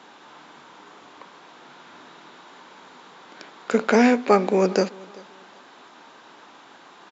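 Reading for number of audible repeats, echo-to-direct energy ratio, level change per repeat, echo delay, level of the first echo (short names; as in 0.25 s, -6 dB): 2, -23.0 dB, -10.5 dB, 0.388 s, -23.5 dB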